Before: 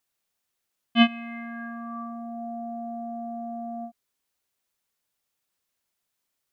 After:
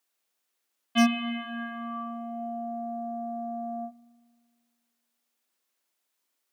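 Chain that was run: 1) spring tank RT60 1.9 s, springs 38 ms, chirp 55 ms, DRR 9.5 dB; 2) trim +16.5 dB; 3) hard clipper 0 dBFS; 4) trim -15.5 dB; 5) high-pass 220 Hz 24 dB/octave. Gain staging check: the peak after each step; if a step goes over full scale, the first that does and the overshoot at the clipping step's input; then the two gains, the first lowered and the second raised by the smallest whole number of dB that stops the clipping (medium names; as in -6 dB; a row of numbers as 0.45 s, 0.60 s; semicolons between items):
-6.5 dBFS, +10.0 dBFS, 0.0 dBFS, -15.5 dBFS, -11.0 dBFS; step 2, 10.0 dB; step 2 +6.5 dB, step 4 -5.5 dB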